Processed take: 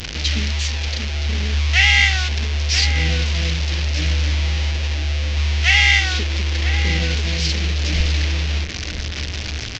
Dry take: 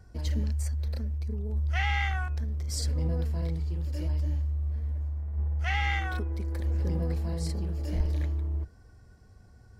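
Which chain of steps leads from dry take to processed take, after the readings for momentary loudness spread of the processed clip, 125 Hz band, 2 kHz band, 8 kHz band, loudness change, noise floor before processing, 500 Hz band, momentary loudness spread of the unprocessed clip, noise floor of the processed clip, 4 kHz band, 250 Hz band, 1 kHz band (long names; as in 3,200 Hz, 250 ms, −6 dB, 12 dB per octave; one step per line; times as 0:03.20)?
11 LU, +9.5 dB, +18.0 dB, +17.0 dB, +12.5 dB, −54 dBFS, +8.5 dB, 5 LU, −27 dBFS, +24.0 dB, +7.5 dB, +6.5 dB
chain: linear delta modulator 32 kbit/s, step −32.5 dBFS
high shelf with overshoot 1,700 Hz +12 dB, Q 1.5
slap from a distant wall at 170 metres, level −7 dB
level +6.5 dB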